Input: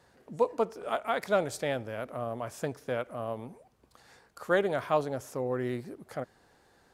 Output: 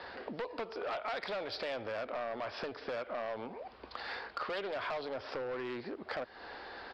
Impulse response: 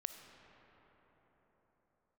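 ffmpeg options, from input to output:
-filter_complex "[0:a]acrossover=split=120|3000[a][b][c];[b]acompressor=threshold=-34dB:ratio=6[d];[a][d][c]amix=inputs=3:normalize=0,equalizer=f=140:w=1.7:g=-12.5,aresample=11025,asoftclip=type=hard:threshold=-38.5dB,aresample=44100,acompressor=threshold=-54dB:ratio=5,asplit=2[e][f];[f]highpass=f=720:p=1,volume=9dB,asoftclip=type=tanh:threshold=-40dB[g];[e][g]amix=inputs=2:normalize=0,lowpass=f=3.9k:p=1,volume=-6dB,volume=15dB"

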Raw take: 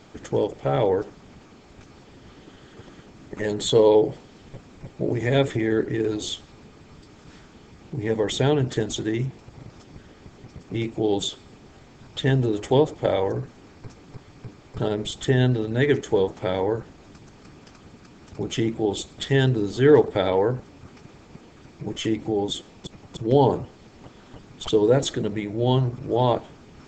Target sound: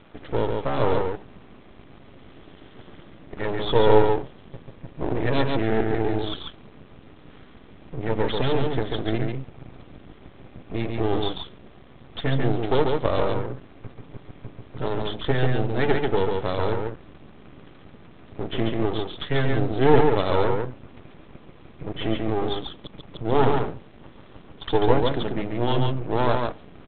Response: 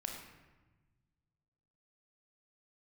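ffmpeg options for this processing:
-af "aresample=8000,aeval=exprs='max(val(0),0)':c=same,aresample=44100,aecho=1:1:140:0.668,volume=2.5dB"

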